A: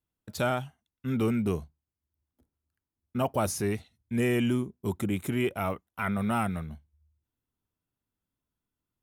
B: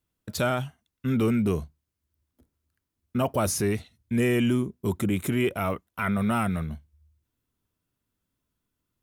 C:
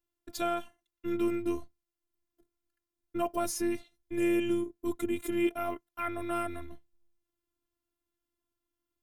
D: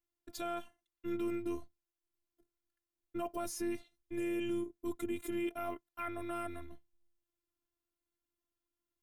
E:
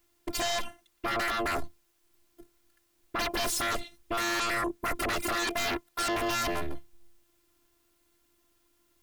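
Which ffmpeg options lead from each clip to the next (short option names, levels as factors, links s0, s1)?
-filter_complex "[0:a]equalizer=f=810:w=5:g=-5,asplit=2[s0][s1];[s1]alimiter=level_in=1.41:limit=0.0631:level=0:latency=1:release=23,volume=0.708,volume=1.12[s2];[s0][s2]amix=inputs=2:normalize=0"
-af "equalizer=f=250:w=0.36:g=3,afftfilt=real='hypot(re,im)*cos(PI*b)':imag='0':win_size=512:overlap=0.75,volume=0.631"
-af "alimiter=limit=0.0841:level=0:latency=1:release=17,volume=0.562"
-af "aeval=exprs='0.0473*sin(PI/2*7.08*val(0)/0.0473)':c=same"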